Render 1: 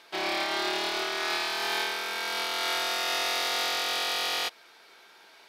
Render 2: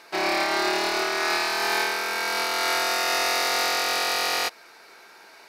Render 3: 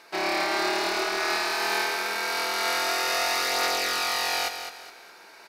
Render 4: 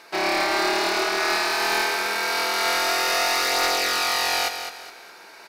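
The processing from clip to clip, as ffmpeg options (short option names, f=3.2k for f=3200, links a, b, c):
-af "equalizer=f=3.3k:t=o:w=0.33:g=-11.5,volume=6.5dB"
-af "areverse,acompressor=mode=upward:threshold=-42dB:ratio=2.5,areverse,aecho=1:1:208|416|624|832:0.376|0.132|0.046|0.0161,volume=-2.5dB"
-af "aeval=exprs='clip(val(0),-1,0.0841)':c=same,volume=4dB"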